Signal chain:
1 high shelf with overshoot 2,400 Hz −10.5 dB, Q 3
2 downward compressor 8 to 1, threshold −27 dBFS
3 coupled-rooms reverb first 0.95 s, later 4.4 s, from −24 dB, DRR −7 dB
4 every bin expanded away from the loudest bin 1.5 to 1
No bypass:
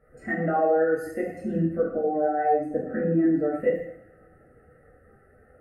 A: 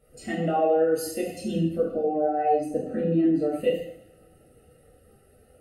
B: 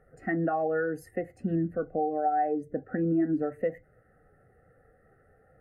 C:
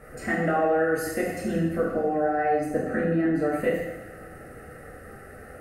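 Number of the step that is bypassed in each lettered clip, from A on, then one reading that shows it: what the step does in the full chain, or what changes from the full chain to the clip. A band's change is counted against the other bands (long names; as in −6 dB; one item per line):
1, 2 kHz band −6.0 dB
3, change in momentary loudness spread −2 LU
4, 2 kHz band +5.0 dB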